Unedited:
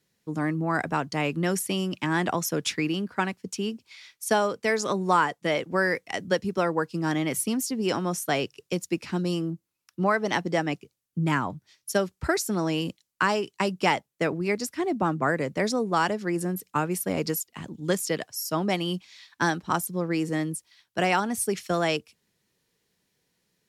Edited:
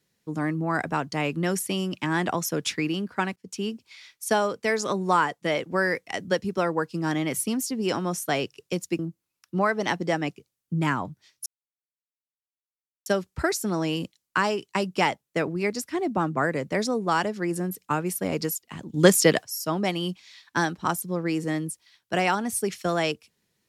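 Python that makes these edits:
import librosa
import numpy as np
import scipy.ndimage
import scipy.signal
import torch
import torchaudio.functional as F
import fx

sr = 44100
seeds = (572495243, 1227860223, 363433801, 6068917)

y = fx.edit(x, sr, fx.fade_in_from(start_s=3.36, length_s=0.26, floor_db=-18.5),
    fx.cut(start_s=8.99, length_s=0.45),
    fx.insert_silence(at_s=11.91, length_s=1.6),
    fx.clip_gain(start_s=17.79, length_s=0.5, db=9.5), tone=tone)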